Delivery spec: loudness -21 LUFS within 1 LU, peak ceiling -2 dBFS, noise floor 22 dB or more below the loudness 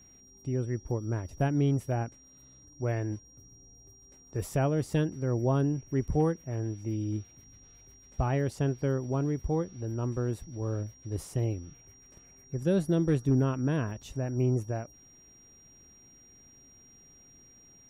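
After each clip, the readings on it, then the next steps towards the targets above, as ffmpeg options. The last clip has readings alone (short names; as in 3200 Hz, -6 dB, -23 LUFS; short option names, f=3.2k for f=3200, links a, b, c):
steady tone 5700 Hz; tone level -55 dBFS; loudness -31.0 LUFS; peak -16.5 dBFS; loudness target -21.0 LUFS
-> -af "bandreject=f=5.7k:w=30"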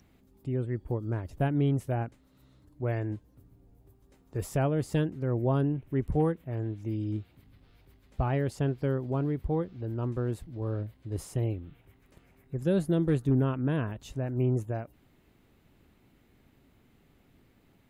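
steady tone none; loudness -31.0 LUFS; peak -16.5 dBFS; loudness target -21.0 LUFS
-> -af "volume=10dB"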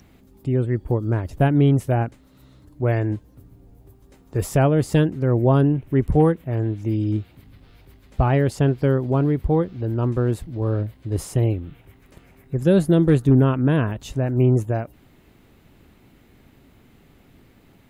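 loudness -21.0 LUFS; peak -6.5 dBFS; noise floor -54 dBFS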